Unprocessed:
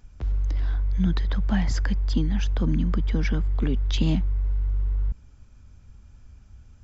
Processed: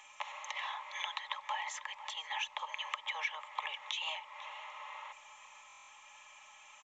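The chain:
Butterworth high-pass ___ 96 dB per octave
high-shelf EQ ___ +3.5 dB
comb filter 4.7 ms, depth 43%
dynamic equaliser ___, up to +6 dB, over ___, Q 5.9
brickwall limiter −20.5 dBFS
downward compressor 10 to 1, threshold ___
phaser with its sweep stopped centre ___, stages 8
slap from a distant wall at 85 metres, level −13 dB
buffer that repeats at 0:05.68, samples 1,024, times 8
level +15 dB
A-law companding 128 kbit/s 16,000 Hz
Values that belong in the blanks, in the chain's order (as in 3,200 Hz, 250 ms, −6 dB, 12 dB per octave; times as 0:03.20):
590 Hz, 2,100 Hz, 910 Hz, −58 dBFS, −47 dBFS, 1,000 Hz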